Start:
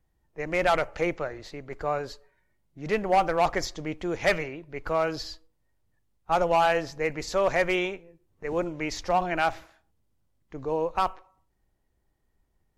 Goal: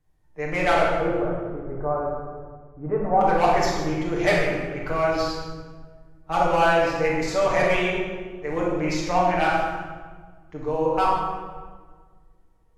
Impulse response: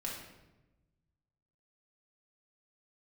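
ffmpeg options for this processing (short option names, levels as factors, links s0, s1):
-filter_complex "[0:a]asettb=1/sr,asplit=3[s0][s1][s2];[s0]atrim=end=0.874[s3];[s1]atrim=start=0.87:end=3.21,asetpts=PTS-STARTPTS,afade=t=in:d=0.004:c=qsin,afade=t=out:st=2.336:d=0.004:c=qsin,lowpass=f=1200:w=0.5412,lowpass=f=1200:w=1.3066[s4];[s2]atrim=start=3.206[s5];[s3][s4]acrossfade=d=0.004:c1=hsin:c2=qsin[s6];[s6][s5]acrossfade=d=0.004:c1=qsin:c2=hsin[s7];[1:a]atrim=start_sample=2205,asetrate=26019,aresample=44100[s8];[s7][s8]afir=irnorm=-1:irlink=0"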